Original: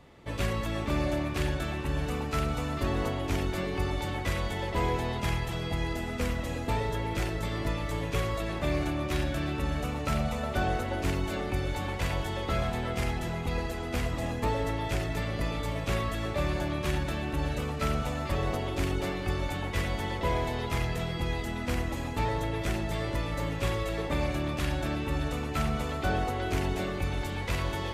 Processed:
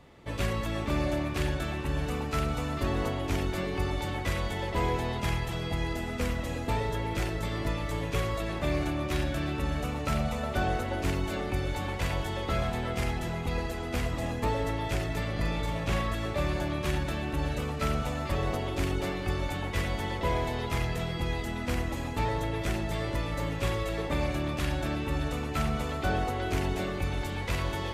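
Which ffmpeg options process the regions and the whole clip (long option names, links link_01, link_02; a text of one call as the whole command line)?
ffmpeg -i in.wav -filter_complex "[0:a]asettb=1/sr,asplit=3[link_01][link_02][link_03];[link_01]atrim=end=15.324[link_04];[link_02]atrim=start=15.32:end=16.14,asetpts=PTS-STARTPTS,afade=type=in:duration=0.004:curve=qsin,afade=type=out:start_time=0.816:duration=0.004:curve=qsin,highshelf=frequency=8200:gain=-5,asplit=2[link_05][link_06];[link_06]adelay=42,volume=-5dB[link_07];[link_05][link_07]amix=inputs=2:normalize=0,atrim=end_sample=36162[link_08];[link_03]atrim=start=16.136[link_09];[link_04][link_08]acrossfade=duration=0.004:curve1=hsin:curve2=qsin[link_10];[link_10][link_09]acrossfade=duration=0.004:curve1=qsin:curve2=hsin" out.wav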